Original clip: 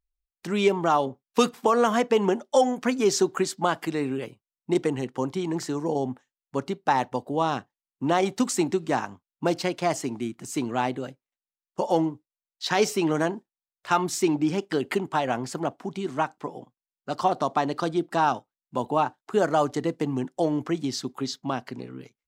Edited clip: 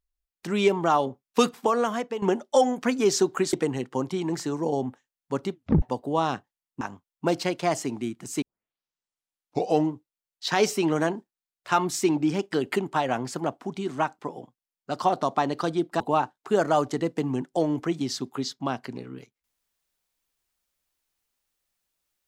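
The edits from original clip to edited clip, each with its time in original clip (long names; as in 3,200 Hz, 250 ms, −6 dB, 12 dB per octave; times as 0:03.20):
0:01.51–0:02.22: fade out, to −13 dB
0:03.53–0:04.76: remove
0:06.75: tape stop 0.30 s
0:08.04–0:09.00: remove
0:10.61: tape start 1.46 s
0:18.19–0:18.83: remove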